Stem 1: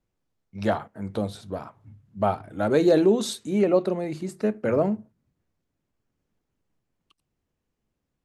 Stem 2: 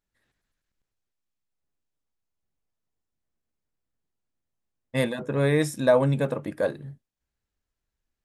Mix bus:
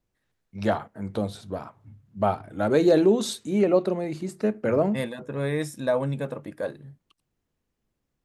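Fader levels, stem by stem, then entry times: 0.0 dB, -5.0 dB; 0.00 s, 0.00 s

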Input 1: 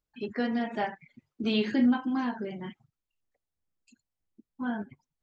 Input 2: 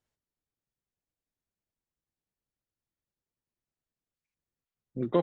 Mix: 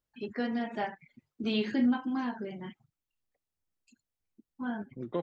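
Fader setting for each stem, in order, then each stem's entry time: -3.0 dB, -8.0 dB; 0.00 s, 0.00 s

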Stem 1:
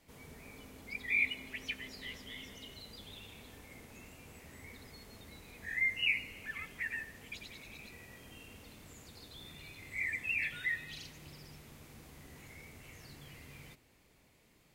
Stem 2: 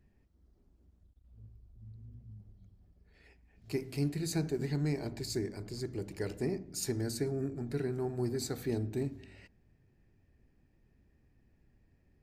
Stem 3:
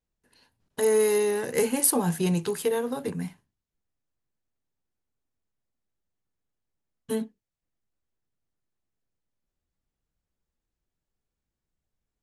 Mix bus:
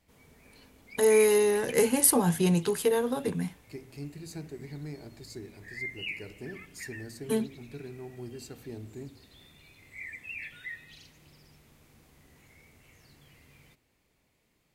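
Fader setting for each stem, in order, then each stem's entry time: -5.5 dB, -8.0 dB, +0.5 dB; 0.00 s, 0.00 s, 0.20 s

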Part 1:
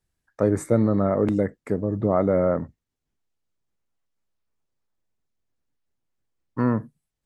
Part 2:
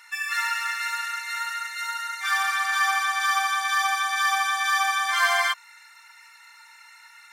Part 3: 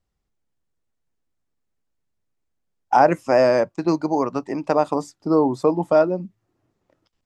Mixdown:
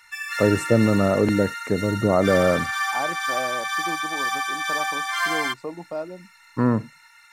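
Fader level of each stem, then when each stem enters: +2.0 dB, -2.5 dB, -14.5 dB; 0.00 s, 0.00 s, 0.00 s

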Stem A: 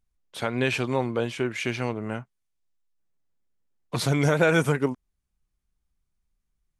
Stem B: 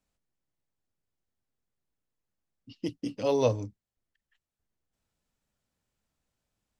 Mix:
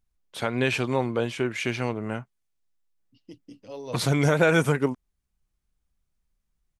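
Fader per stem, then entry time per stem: +0.5 dB, -12.5 dB; 0.00 s, 0.45 s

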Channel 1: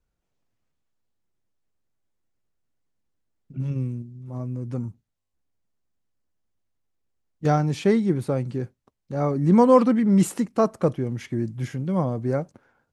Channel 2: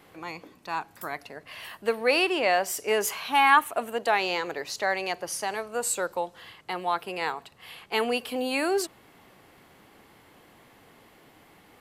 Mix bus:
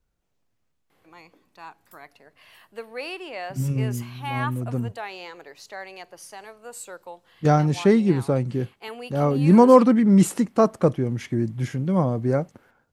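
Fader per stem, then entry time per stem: +2.5 dB, -10.5 dB; 0.00 s, 0.90 s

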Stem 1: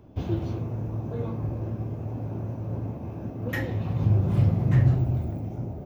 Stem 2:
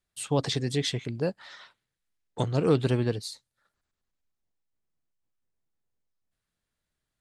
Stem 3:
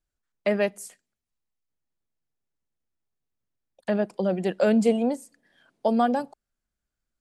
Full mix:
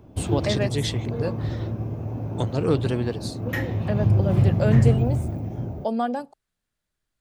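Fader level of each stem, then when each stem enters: +2.5 dB, +0.5 dB, -3.0 dB; 0.00 s, 0.00 s, 0.00 s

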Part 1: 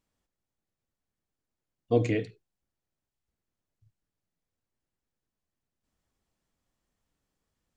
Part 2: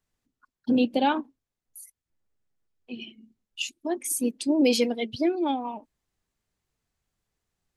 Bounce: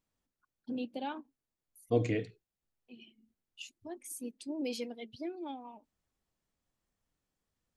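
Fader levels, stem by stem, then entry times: -4.5 dB, -15.5 dB; 0.00 s, 0.00 s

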